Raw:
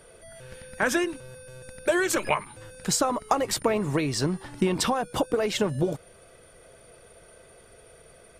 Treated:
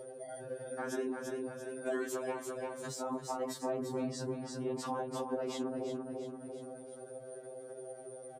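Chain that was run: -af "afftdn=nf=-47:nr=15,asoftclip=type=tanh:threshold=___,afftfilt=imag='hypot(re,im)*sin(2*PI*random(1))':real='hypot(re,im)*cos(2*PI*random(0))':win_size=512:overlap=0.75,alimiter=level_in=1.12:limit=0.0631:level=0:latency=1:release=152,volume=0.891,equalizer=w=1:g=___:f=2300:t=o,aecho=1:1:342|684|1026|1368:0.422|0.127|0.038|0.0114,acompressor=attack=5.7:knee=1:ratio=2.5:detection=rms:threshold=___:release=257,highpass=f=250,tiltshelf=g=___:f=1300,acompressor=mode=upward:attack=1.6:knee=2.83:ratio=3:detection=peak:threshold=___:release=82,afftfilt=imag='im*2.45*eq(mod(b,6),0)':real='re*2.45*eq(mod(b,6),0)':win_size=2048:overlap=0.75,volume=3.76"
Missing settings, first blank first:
0.335, -7.5, 0.00355, 5, 0.00316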